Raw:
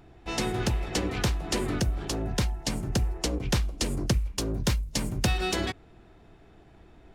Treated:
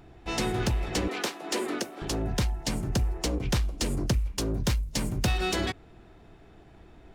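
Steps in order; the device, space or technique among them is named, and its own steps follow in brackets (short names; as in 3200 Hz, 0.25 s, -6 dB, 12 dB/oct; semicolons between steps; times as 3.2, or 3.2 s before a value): 1.08–2.02 HPF 270 Hz 24 dB/oct; saturation between pre-emphasis and de-emphasis (high shelf 4500 Hz +7.5 dB; soft clip -19 dBFS, distortion -17 dB; high shelf 4500 Hz -7.5 dB); gain +1.5 dB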